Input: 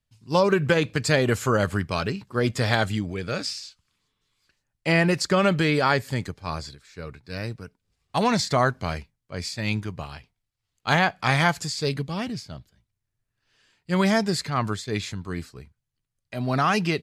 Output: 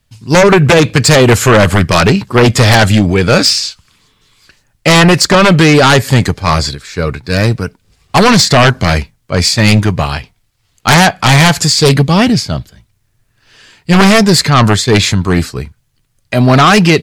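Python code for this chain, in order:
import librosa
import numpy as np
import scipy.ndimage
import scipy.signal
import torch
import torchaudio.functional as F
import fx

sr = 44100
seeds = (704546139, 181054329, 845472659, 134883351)

p1 = fx.rider(x, sr, range_db=4, speed_s=0.5)
p2 = x + (p1 * librosa.db_to_amplitude(0.5))
p3 = fx.fold_sine(p2, sr, drive_db=14, ceiling_db=2.0)
y = p3 * librosa.db_to_amplitude(-4.0)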